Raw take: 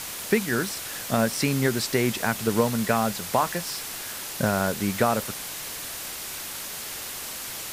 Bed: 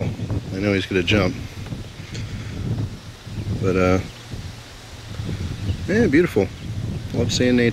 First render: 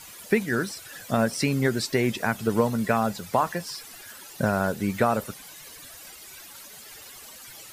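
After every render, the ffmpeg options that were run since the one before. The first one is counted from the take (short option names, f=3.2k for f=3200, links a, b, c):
-af "afftdn=nr=14:nf=-35"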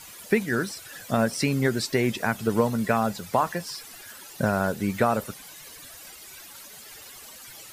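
-af anull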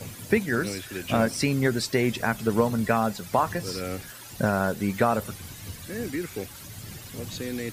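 -filter_complex "[1:a]volume=-15.5dB[a];[0:a][a]amix=inputs=2:normalize=0"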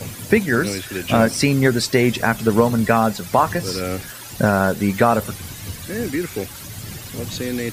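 -af "volume=7.5dB,alimiter=limit=-2dB:level=0:latency=1"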